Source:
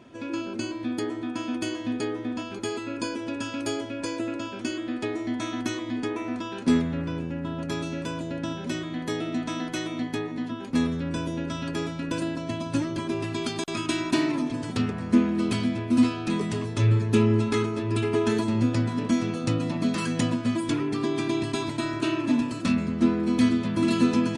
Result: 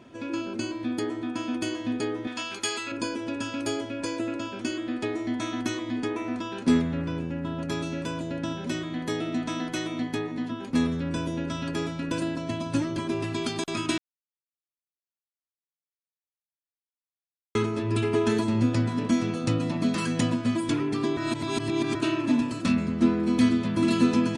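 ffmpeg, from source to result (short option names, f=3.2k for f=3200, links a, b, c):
-filter_complex "[0:a]asettb=1/sr,asplit=3[a][b][c];[a]atrim=end=2.274[d];[b]atrim=start=2.27:end=2.92,asetpts=PTS-STARTPTS,afade=t=in:d=0.004:c=qsin,afade=t=out:st=0.646:d=0.004:c=qsin,tiltshelf=f=830:g=-9.5[e];[c]atrim=start=2.916[f];[d][e]acrossfade=d=0.004:c1=hsin:c2=qsin[g];[g][f]acrossfade=d=0.004:c1=qsin:c2=hsin,asplit=5[h][i][j][k][l];[h]atrim=end=13.98,asetpts=PTS-STARTPTS,afade=t=out:st=13.976:d=0.004:c=hsin[m];[i]atrim=start=13.98:end=17.55,asetpts=PTS-STARTPTS,volume=0[n];[j]atrim=start=17.55:end=21.172,asetpts=PTS-STARTPTS,afade=t=in:d=0.004:c=hsin[o];[k]atrim=start=21.168:end=21.952,asetpts=PTS-STARTPTS,areverse[p];[l]atrim=start=21.948[q];[m][n][o]concat=n=3:v=0:a=1[r];[r][p]acrossfade=d=0.004:c1=hsin:c2=hsin[s];[s][q]acrossfade=d=0.004:c1=hsin:c2=hsin"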